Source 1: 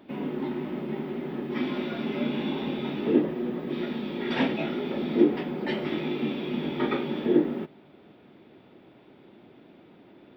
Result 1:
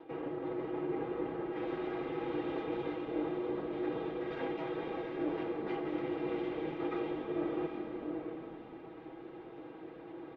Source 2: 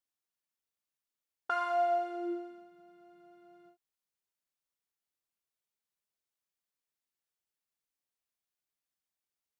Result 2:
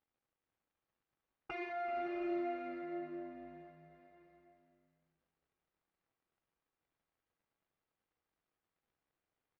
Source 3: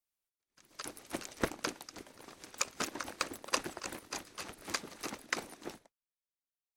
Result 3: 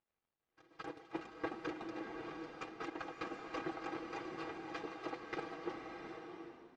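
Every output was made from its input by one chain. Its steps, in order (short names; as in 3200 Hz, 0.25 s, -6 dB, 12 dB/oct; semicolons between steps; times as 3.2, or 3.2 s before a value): minimum comb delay 2.5 ms; HPF 100 Hz 12 dB/oct; low shelf 250 Hz -8 dB; comb 6.2 ms, depth 69%; reverse; compressor 6:1, threshold -41 dBFS; reverse; crackle 200/s -72 dBFS; tape spacing loss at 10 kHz 42 dB; on a send: frequency-shifting echo 0.382 s, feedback 30%, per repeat -94 Hz, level -16 dB; on the sum: bloom reverb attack 0.73 s, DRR 3 dB; gain +7 dB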